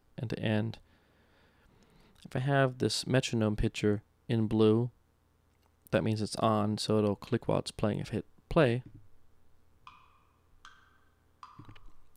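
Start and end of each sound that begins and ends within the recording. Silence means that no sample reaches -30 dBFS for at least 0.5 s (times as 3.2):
2.32–4.86
5.87–8.77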